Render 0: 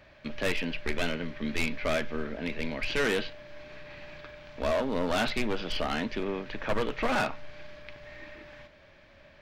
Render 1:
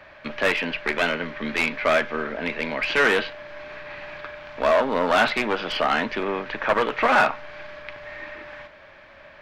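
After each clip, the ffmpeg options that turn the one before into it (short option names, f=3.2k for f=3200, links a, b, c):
-filter_complex "[0:a]equalizer=f=1.2k:t=o:w=2.9:g=12.5,acrossover=split=120[a][b];[a]acompressor=threshold=-41dB:ratio=6[c];[c][b]amix=inputs=2:normalize=0"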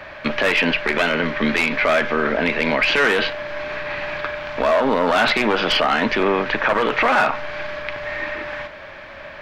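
-af "alimiter=level_in=17.5dB:limit=-1dB:release=50:level=0:latency=1,volume=-7dB"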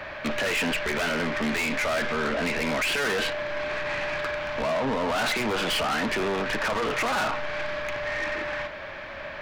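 -af "asoftclip=type=tanh:threshold=-23.5dB"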